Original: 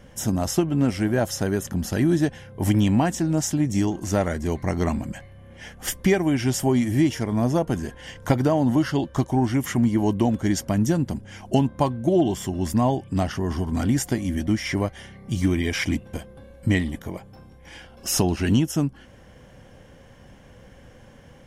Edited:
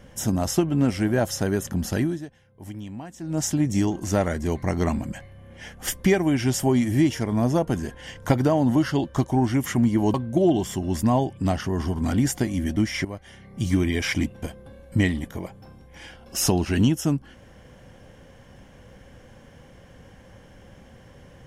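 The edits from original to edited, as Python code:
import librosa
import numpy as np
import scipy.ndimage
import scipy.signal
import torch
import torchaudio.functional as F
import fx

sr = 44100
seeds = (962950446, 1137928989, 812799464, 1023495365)

y = fx.edit(x, sr, fx.fade_down_up(start_s=1.97, length_s=1.46, db=-17.0, fade_s=0.33, curve='qua'),
    fx.cut(start_s=10.14, length_s=1.71),
    fx.fade_in_from(start_s=14.76, length_s=0.58, floor_db=-14.5), tone=tone)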